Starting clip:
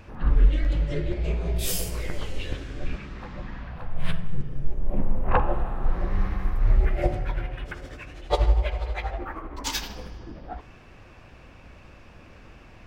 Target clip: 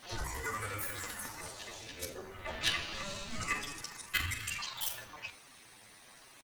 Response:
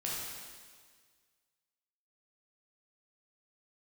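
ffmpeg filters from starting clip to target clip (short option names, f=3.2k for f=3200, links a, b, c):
-filter_complex "[0:a]highpass=f=420:p=1,afftfilt=real='re*gte(hypot(re,im),0.00316)':imag='im*gte(hypot(re,im),0.00316)':win_size=1024:overlap=0.75,aeval=exprs='0.282*(cos(1*acos(clip(val(0)/0.282,-1,1)))-cos(1*PI/2))+0.00178*(cos(2*acos(clip(val(0)/0.282,-1,1)))-cos(2*PI/2))+0.02*(cos(3*acos(clip(val(0)/0.282,-1,1)))-cos(3*PI/2))':c=same,afreqshift=-32,aeval=exprs='(tanh(14.1*val(0)+0.15)-tanh(0.15))/14.1':c=same,asetrate=80880,aresample=44100,atempo=0.545254,acrusher=bits=9:mix=0:aa=0.000001,asplit=2[a][b];[b]asplit=4[c][d][e][f];[c]adelay=86,afreqshift=-86,volume=-12dB[g];[d]adelay=172,afreqshift=-172,volume=-21.1dB[h];[e]adelay=258,afreqshift=-258,volume=-30.2dB[i];[f]adelay=344,afreqshift=-344,volume=-39.4dB[j];[g][h][i][j]amix=inputs=4:normalize=0[k];[a][k]amix=inputs=2:normalize=0,asetrate=88200,aresample=44100"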